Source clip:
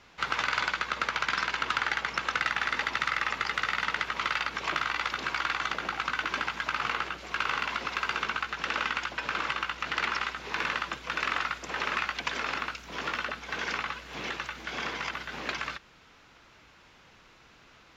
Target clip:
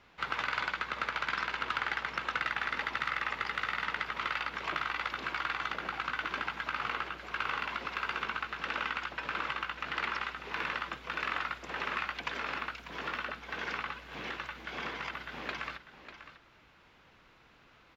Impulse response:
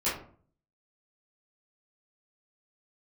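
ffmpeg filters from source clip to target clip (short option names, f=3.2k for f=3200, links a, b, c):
-filter_complex "[0:a]equalizer=f=6.5k:t=o:w=1.1:g=-8.5,asplit=2[a][b];[b]aecho=0:1:595:0.251[c];[a][c]amix=inputs=2:normalize=0,volume=-4dB"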